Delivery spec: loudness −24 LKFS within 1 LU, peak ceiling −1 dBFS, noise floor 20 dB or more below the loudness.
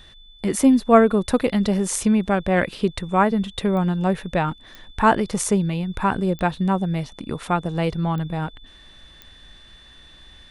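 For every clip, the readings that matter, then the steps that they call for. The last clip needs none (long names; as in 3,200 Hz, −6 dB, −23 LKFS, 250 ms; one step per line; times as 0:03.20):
number of clicks 5; interfering tone 3,500 Hz; level of the tone −48 dBFS; integrated loudness −21.0 LKFS; sample peak −2.5 dBFS; target loudness −24.0 LKFS
→ click removal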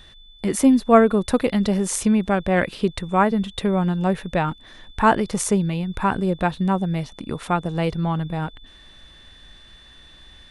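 number of clicks 0; interfering tone 3,500 Hz; level of the tone −48 dBFS
→ notch filter 3,500 Hz, Q 30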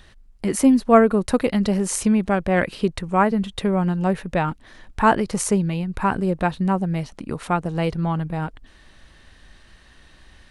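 interfering tone none found; integrated loudness −21.0 LKFS; sample peak −2.5 dBFS; target loudness −24.0 LKFS
→ level −3 dB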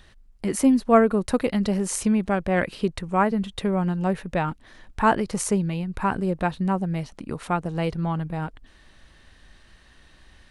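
integrated loudness −24.0 LKFS; sample peak −5.5 dBFS; background noise floor −54 dBFS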